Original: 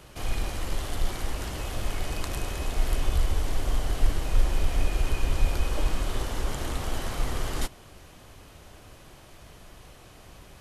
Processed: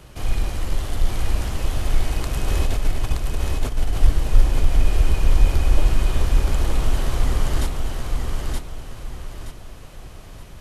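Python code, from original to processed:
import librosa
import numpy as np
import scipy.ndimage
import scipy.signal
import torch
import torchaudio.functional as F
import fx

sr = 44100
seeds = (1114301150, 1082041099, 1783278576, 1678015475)

y = fx.low_shelf(x, sr, hz=200.0, db=6.5)
y = fx.over_compress(y, sr, threshold_db=-22.0, ratio=-1.0, at=(2.47, 3.92), fade=0.02)
y = fx.echo_feedback(y, sr, ms=923, feedback_pct=35, wet_db=-3.0)
y = y * 10.0 ** (1.5 / 20.0)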